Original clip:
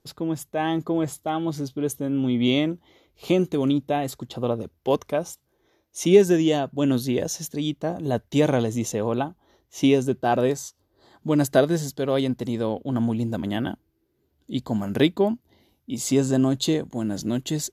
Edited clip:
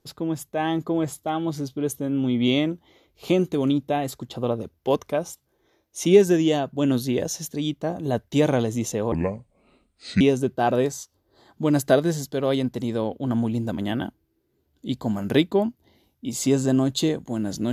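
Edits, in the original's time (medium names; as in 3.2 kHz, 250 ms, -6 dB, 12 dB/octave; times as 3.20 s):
9.12–9.86 s: speed 68%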